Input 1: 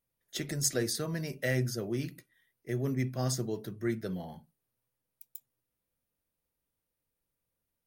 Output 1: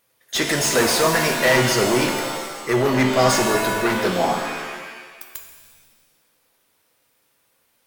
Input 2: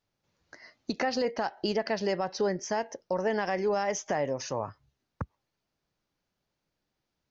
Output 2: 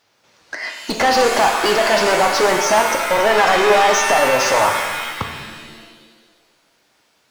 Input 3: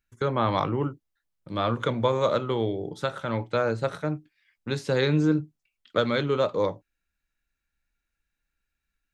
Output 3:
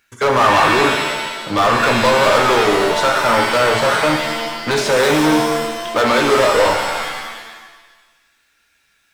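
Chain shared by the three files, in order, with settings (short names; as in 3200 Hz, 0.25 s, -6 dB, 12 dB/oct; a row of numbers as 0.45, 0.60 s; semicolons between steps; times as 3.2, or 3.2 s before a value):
overdrive pedal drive 33 dB, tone 6200 Hz, clips at -9 dBFS; dynamic EQ 950 Hz, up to +6 dB, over -30 dBFS, Q 0.78; shimmer reverb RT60 1.3 s, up +7 st, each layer -2 dB, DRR 4 dB; gain -3 dB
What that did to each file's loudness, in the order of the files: +14.5, +15.5, +12.0 LU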